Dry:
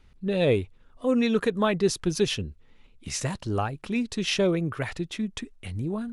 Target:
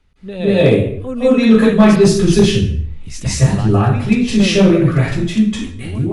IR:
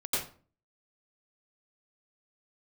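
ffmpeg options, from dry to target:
-filter_complex "[1:a]atrim=start_sample=2205,afade=type=out:start_time=0.32:duration=0.01,atrim=end_sample=14553,asetrate=23373,aresample=44100[link_01];[0:a][link_01]afir=irnorm=-1:irlink=0,acrossover=split=150[link_02][link_03];[link_02]dynaudnorm=framelen=210:gausssize=11:maxgain=14dB[link_04];[link_04][link_03]amix=inputs=2:normalize=0,aeval=exprs='clip(val(0),-1,0.75)':channel_layout=same,volume=-1dB"

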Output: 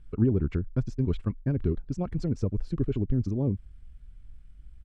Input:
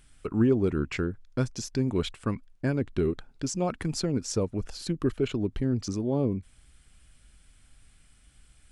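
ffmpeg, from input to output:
ffmpeg -i in.wav -af "atempo=1.8,aemphasis=mode=reproduction:type=riaa,volume=-7.5dB" out.wav

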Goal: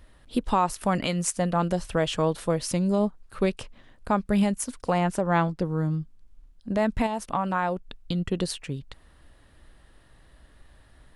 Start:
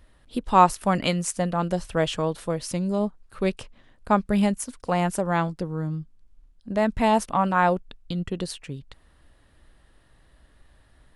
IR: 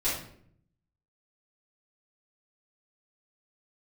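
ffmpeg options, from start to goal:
-filter_complex "[0:a]asettb=1/sr,asplit=3[link_01][link_02][link_03];[link_01]atrim=end=4.984[link_04];[link_02]atrim=start=4.98:end=5.62,asetpts=PTS-STARTPTS,afade=type=in:duration=0.004:curve=qsin,afade=type=out:start_time=0.636:duration=0.004:curve=qsin,highshelf=frequency=6900:gain=-10.5[link_05];[link_03]atrim=start=5.616[link_06];[link_04][link_05]acrossfade=duration=0.004:curve1=hsin:curve2=qsin[link_07];[link_07][link_06]acrossfade=duration=0.004:curve1=qsin:curve2=hsin,asettb=1/sr,asplit=3[link_08][link_09][link_10];[link_08]atrim=end=7.064[link_11];[link_09]atrim=start=7.06:end=8.31,asetpts=PTS-STARTPTS,afade=type=in:duration=0.004:curve=qsin,afade=type=out:start_time=1.246:duration=0.004:curve=qsin,acompressor=threshold=-25dB:ratio=6[link_12];[link_10]atrim=start=8.306[link_13];[link_11][link_12]acrossfade=duration=0.004:curve1=hsin:curve2=qsin[link_14];[link_14][link_13]acrossfade=duration=0.004:curve1=qsin:curve2=hsin,alimiter=limit=-15.5dB:level=0:latency=1:release=222,volume=2.5dB"

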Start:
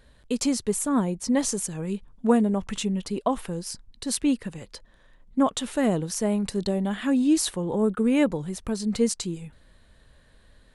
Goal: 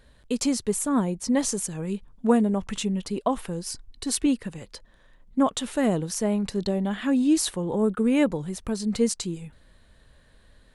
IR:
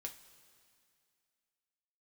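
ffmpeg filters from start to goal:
-filter_complex "[0:a]asettb=1/sr,asplit=3[link_01][link_02][link_03];[link_01]atrim=end=3.644[link_04];[link_02]atrim=start=3.64:end=4.26,asetpts=PTS-STARTPTS,afade=type=in:duration=0.004:curve=qsin,afade=type=out:start_time=0.616:duration=0.004:curve=qsin,aecho=1:1:2.7:0.62,atrim=end_sample=27342[link_05];[link_03]atrim=start=4.256[link_06];[link_04][link_05]acrossfade=duration=0.004:curve1=hsin:curve2=qsin[link_07];[link_07][link_06]acrossfade=duration=0.004:curve1=qsin:curve2=hsin,asettb=1/sr,asplit=3[link_08][link_09][link_10];[link_08]atrim=end=6.224[link_11];[link_09]atrim=start=6.22:end=7.13,asetpts=PTS-STARTPTS,afade=type=in:duration=0.004:curve=qsin,afade=type=out:start_time=0.906:duration=0.004:curve=qsin,equalizer=frequency=9200:width_type=o:width=0.57:gain=-6.5[link_12];[link_10]atrim=start=7.126[link_13];[link_11][link_12]acrossfade=duration=0.004:curve1=hsin:curve2=qsin[link_14];[link_14][link_13]acrossfade=duration=0.004:curve1=qsin:curve2=hsin"

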